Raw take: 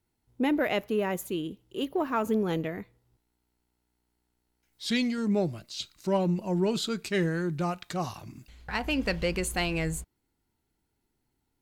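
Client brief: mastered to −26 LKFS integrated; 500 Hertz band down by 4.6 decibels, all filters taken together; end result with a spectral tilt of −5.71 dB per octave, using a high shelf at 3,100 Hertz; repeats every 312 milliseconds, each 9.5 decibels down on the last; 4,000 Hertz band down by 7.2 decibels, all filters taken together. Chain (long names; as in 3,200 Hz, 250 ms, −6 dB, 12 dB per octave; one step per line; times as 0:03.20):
parametric band 500 Hz −6 dB
high-shelf EQ 3,100 Hz −4 dB
parametric band 4,000 Hz −6.5 dB
repeating echo 312 ms, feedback 33%, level −9.5 dB
level +6 dB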